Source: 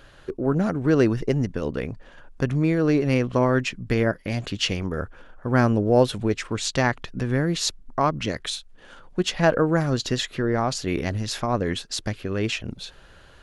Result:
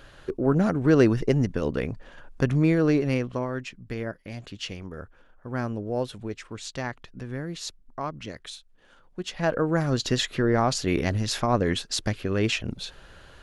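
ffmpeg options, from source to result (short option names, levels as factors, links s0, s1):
-af "volume=3.98,afade=t=out:st=2.71:d=0.76:silence=0.281838,afade=t=in:st=9.21:d=1.05:silence=0.266073"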